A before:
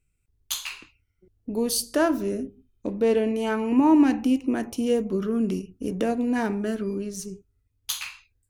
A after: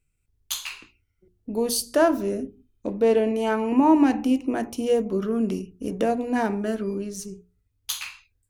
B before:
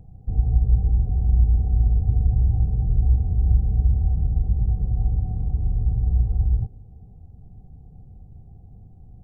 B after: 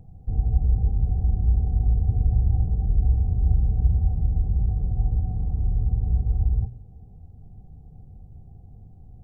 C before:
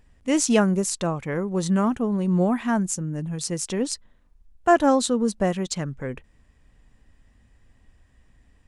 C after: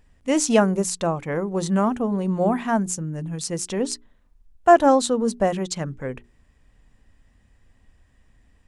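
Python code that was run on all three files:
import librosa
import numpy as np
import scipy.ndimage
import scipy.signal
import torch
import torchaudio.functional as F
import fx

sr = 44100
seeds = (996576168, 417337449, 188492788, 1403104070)

y = fx.hum_notches(x, sr, base_hz=60, count=7)
y = fx.dynamic_eq(y, sr, hz=710.0, q=1.2, threshold_db=-37.0, ratio=4.0, max_db=5)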